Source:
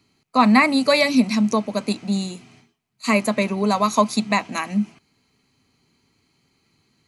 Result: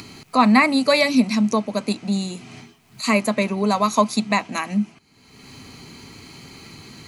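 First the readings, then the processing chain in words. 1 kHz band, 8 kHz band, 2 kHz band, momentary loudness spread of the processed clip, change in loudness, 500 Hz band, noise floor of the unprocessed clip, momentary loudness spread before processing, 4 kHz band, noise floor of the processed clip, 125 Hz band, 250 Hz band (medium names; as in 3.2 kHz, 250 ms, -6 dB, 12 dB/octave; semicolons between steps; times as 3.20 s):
0.0 dB, +0.5 dB, 0.0 dB, 10 LU, 0.0 dB, 0.0 dB, -67 dBFS, 10 LU, +0.5 dB, -56 dBFS, 0.0 dB, 0.0 dB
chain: upward compressor, threshold -22 dBFS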